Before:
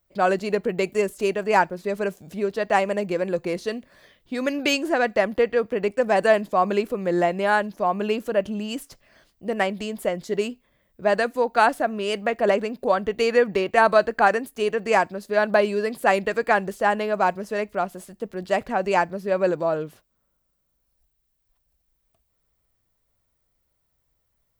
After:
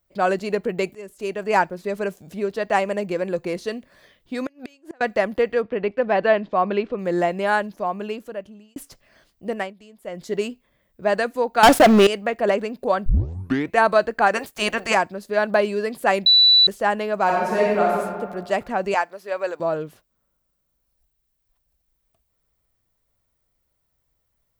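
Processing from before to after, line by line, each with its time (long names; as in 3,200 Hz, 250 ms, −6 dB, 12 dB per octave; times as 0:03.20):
0:00.95–0:01.53: fade in linear, from −22.5 dB
0:04.42–0:05.01: gate with flip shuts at −19 dBFS, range −32 dB
0:05.62–0:06.99: low-pass filter 4,000 Hz 24 dB per octave
0:07.56–0:08.76: fade out linear
0:09.50–0:10.26: duck −17.5 dB, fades 0.24 s
0:11.63–0:12.07: leveller curve on the samples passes 5
0:13.06: tape start 0.71 s
0:14.34–0:14.93: ceiling on every frequency bin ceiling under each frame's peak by 21 dB
0:16.26–0:16.67: beep over 3,960 Hz −10 dBFS
0:17.24–0:17.96: thrown reverb, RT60 1.6 s, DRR −4.5 dB
0:18.94–0:19.60: high-pass filter 630 Hz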